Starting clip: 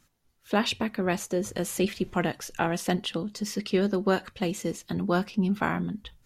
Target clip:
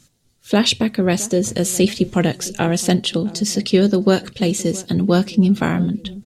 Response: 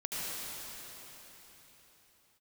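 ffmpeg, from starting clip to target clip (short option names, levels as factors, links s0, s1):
-filter_complex "[0:a]equalizer=f=125:t=o:w=1:g=10,equalizer=f=250:t=o:w=1:g=4,equalizer=f=500:t=o:w=1:g=5,equalizer=f=1000:t=o:w=1:g=-4,equalizer=f=4000:t=o:w=1:g=7,equalizer=f=8000:t=o:w=1:g=10,asplit=2[s0][s1];[s1]adelay=665,lowpass=f=930:p=1,volume=0.119,asplit=2[s2][s3];[s3]adelay=665,lowpass=f=930:p=1,volume=0.53,asplit=2[s4][s5];[s5]adelay=665,lowpass=f=930:p=1,volume=0.53,asplit=2[s6][s7];[s7]adelay=665,lowpass=f=930:p=1,volume=0.53[s8];[s0][s2][s4][s6][s8]amix=inputs=5:normalize=0,volume=1.68"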